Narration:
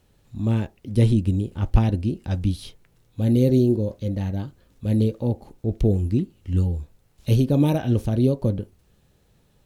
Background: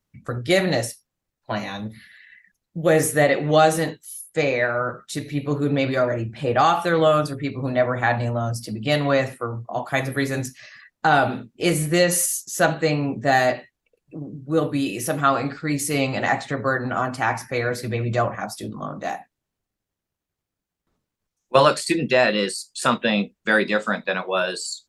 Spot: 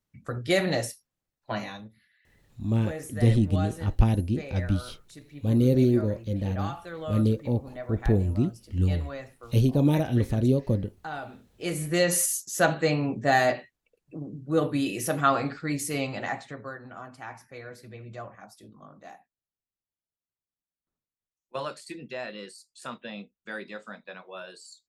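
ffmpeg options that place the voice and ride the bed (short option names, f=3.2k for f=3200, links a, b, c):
-filter_complex "[0:a]adelay=2250,volume=-3dB[a];[1:a]volume=10.5dB,afade=t=out:st=1.61:d=0.3:silence=0.199526,afade=t=in:st=11.44:d=0.74:silence=0.16788,afade=t=out:st=15.35:d=1.42:silence=0.177828[b];[a][b]amix=inputs=2:normalize=0"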